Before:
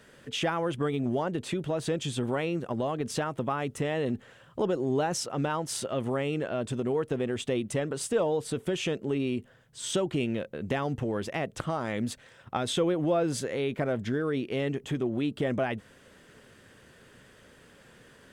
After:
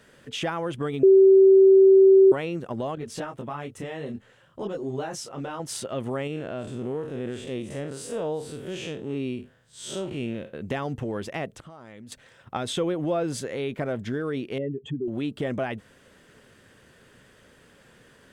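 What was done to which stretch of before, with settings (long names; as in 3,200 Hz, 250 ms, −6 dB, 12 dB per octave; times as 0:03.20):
0:01.03–0:02.32: beep over 385 Hz −10.5 dBFS
0:02.95–0:05.60: micro pitch shift up and down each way 20 cents
0:06.27–0:10.53: spectrum smeared in time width 113 ms
0:11.49–0:12.12: downward compressor, threshold −42 dBFS
0:14.58–0:15.08: expanding power law on the bin magnitudes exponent 2.2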